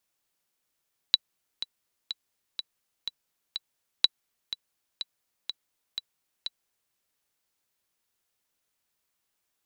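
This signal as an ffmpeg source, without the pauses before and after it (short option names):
-f lavfi -i "aevalsrc='pow(10,(-5-13.5*gte(mod(t,6*60/124),60/124))/20)*sin(2*PI*3940*mod(t,60/124))*exp(-6.91*mod(t,60/124)/0.03)':d=5.8:s=44100"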